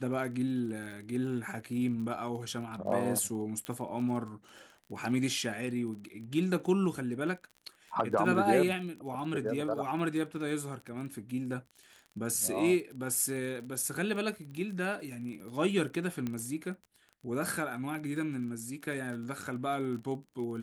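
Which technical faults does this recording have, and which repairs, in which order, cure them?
crackle 27 per s -40 dBFS
3.65 s: pop -22 dBFS
16.27 s: pop -22 dBFS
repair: de-click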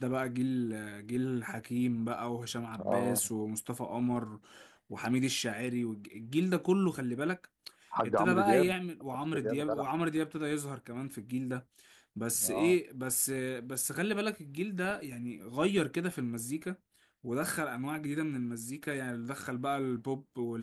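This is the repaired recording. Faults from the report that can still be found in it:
nothing left

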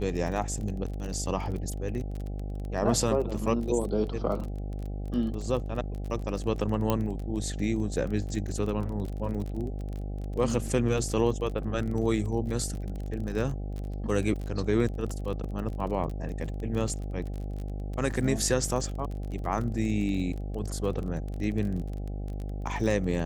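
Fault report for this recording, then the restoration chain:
buzz 50 Hz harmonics 16 -34 dBFS
crackle 29 per s -34 dBFS
6.90 s: pop -12 dBFS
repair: de-click; de-hum 50 Hz, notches 16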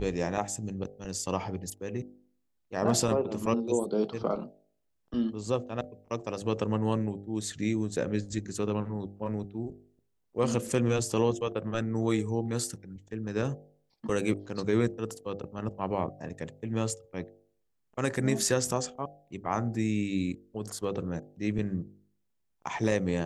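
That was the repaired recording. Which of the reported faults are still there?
nothing left

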